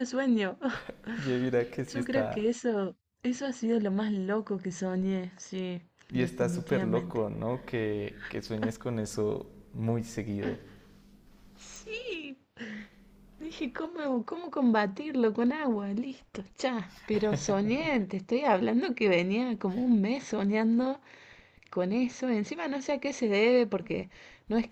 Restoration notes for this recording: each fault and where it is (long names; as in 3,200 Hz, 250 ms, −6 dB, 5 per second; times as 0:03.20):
0:11.76: click